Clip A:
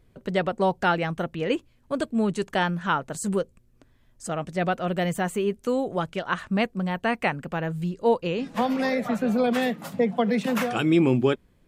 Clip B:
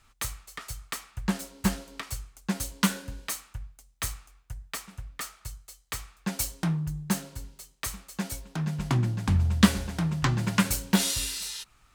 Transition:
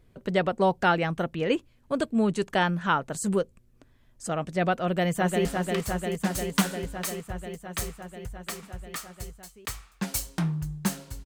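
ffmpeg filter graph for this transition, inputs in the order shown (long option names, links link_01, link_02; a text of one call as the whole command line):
ffmpeg -i cue0.wav -i cue1.wav -filter_complex "[0:a]apad=whole_dur=11.25,atrim=end=11.25,atrim=end=5.452[link_01];[1:a]atrim=start=1.698:end=7.5[link_02];[link_01][link_02]acrossfade=duration=0.004:curve1=hsin:curve2=hsin,asplit=2[link_03][link_04];[link_04]afade=type=in:start_time=4.85:duration=0.01,afade=type=out:start_time=5.45:duration=0.01,aecho=0:1:350|700|1050|1400|1750|2100|2450|2800|3150|3500|3850|4200:0.630957|0.504766|0.403813|0.32305|0.25844|0.206752|0.165402|0.132321|0.105857|0.0846857|0.0677485|0.0541988[link_05];[link_03][link_05]amix=inputs=2:normalize=0" out.wav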